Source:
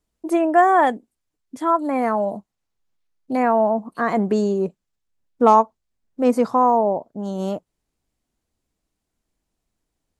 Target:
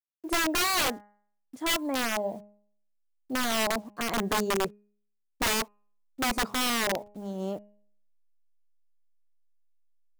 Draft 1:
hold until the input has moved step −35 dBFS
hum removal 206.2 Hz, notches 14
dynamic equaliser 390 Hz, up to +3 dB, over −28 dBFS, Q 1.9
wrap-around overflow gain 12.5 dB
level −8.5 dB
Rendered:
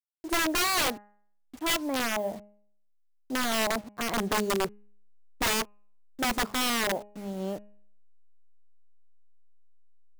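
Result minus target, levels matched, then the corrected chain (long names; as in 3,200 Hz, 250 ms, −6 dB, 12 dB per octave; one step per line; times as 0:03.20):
hold until the input has moved: distortion +13 dB
hold until the input has moved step −46 dBFS
hum removal 206.2 Hz, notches 14
dynamic equaliser 390 Hz, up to +3 dB, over −28 dBFS, Q 1.9
wrap-around overflow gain 12.5 dB
level −8.5 dB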